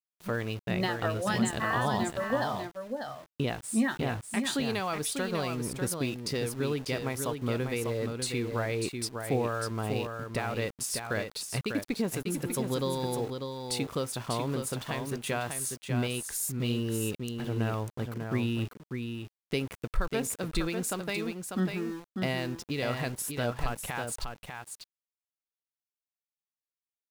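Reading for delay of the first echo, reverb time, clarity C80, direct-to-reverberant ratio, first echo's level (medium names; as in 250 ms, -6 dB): 595 ms, no reverb, no reverb, no reverb, -6.0 dB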